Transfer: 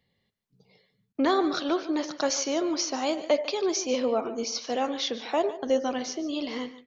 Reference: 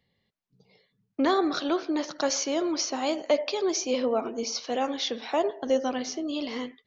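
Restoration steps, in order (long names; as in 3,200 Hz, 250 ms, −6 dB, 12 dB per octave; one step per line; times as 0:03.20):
repair the gap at 0:01.13, 17 ms
echo removal 147 ms −15.5 dB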